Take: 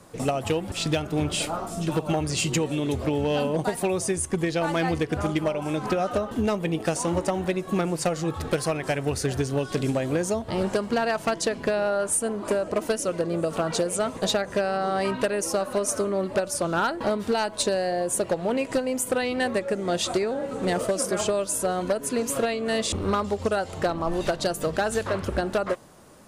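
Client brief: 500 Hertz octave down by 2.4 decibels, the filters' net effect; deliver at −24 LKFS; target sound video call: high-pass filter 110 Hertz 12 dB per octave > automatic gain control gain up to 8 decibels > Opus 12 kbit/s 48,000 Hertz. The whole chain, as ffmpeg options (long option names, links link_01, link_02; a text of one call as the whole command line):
ffmpeg -i in.wav -af "highpass=110,equalizer=frequency=500:width_type=o:gain=-3,dynaudnorm=maxgain=8dB" -ar 48000 -c:a libopus -b:a 12k out.opus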